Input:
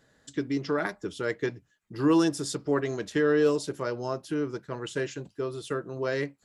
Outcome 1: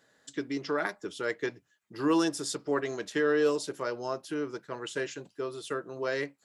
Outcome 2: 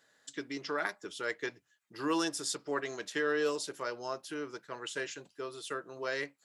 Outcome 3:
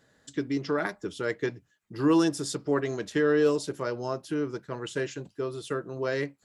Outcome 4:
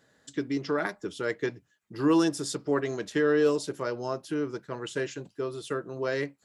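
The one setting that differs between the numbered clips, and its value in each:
high-pass, cutoff frequency: 400 Hz, 1.1 kHz, 48 Hz, 130 Hz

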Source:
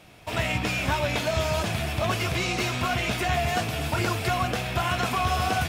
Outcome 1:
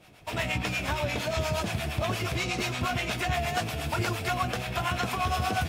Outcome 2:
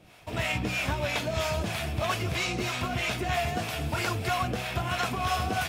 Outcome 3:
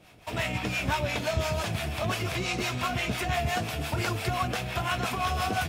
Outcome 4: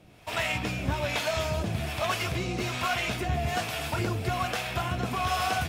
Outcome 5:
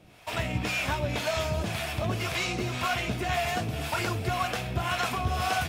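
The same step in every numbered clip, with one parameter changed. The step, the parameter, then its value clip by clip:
harmonic tremolo, rate: 8.5 Hz, 3.1 Hz, 5.8 Hz, 1.2 Hz, 1.9 Hz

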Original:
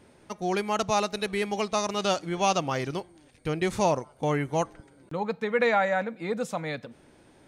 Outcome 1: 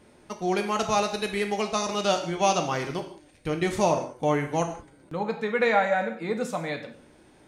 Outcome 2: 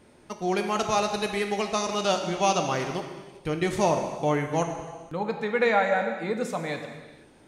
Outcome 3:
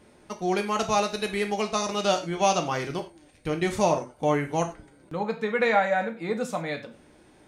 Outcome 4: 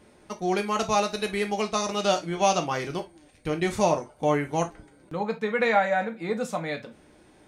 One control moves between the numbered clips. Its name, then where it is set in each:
gated-style reverb, gate: 210 ms, 520 ms, 130 ms, 90 ms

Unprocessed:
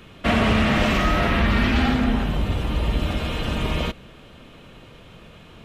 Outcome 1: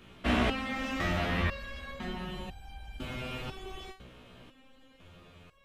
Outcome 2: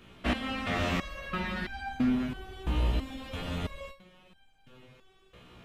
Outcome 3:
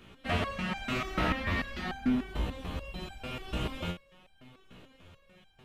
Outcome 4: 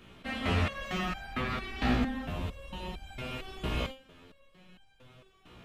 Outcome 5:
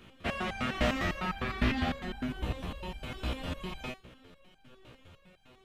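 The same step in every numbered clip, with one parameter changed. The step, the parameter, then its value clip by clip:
resonator arpeggio, rate: 2 Hz, 3 Hz, 6.8 Hz, 4.4 Hz, 9.9 Hz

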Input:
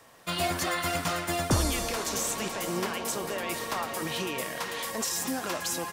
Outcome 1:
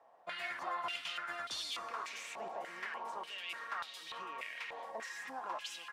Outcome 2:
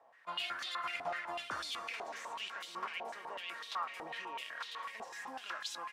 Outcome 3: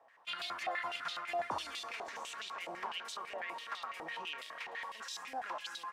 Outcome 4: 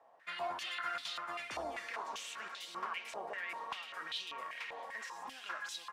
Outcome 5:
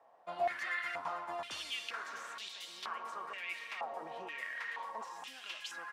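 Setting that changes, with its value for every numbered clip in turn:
step-sequenced band-pass, rate: 3.4 Hz, 8 Hz, 12 Hz, 5.1 Hz, 2.1 Hz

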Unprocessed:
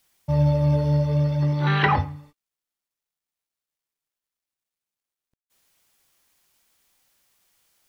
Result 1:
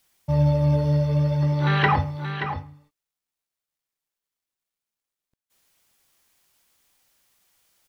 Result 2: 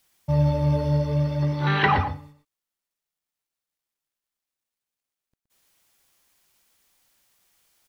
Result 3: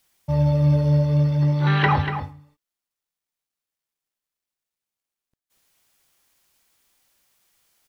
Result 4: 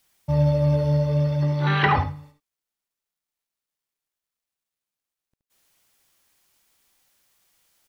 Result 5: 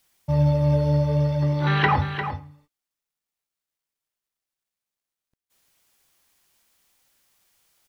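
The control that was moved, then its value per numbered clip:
delay, time: 578 ms, 120 ms, 239 ms, 73 ms, 350 ms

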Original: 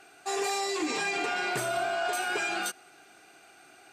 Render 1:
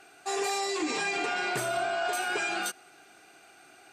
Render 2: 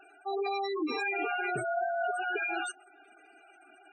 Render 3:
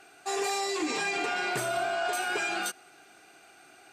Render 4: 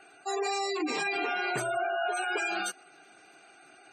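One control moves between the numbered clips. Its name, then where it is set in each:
spectral gate, under each frame's peak: -45 dB, -10 dB, -60 dB, -20 dB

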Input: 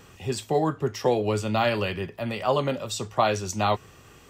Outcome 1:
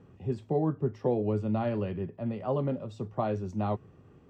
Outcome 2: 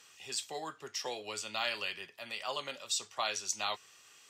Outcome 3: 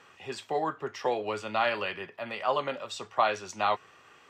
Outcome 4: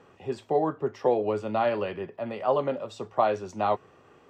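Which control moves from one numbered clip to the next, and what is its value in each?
band-pass filter, frequency: 180 Hz, 5.7 kHz, 1.5 kHz, 580 Hz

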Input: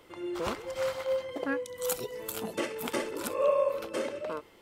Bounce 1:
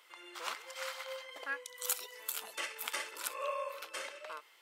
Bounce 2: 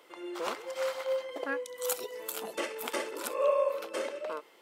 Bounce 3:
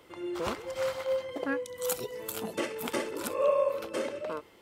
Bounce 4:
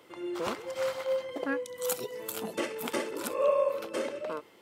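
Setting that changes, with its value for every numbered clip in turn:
high-pass, cutoff frequency: 1.3 kHz, 420 Hz, 41 Hz, 140 Hz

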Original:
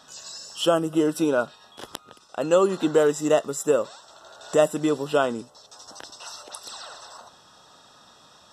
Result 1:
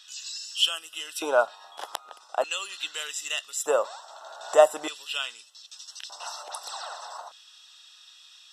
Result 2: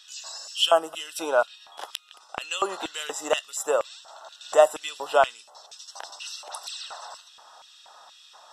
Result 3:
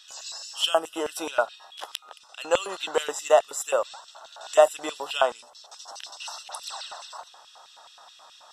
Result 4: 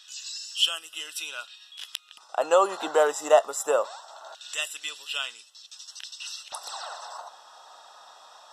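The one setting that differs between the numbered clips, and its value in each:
LFO high-pass, rate: 0.41 Hz, 2.1 Hz, 4.7 Hz, 0.23 Hz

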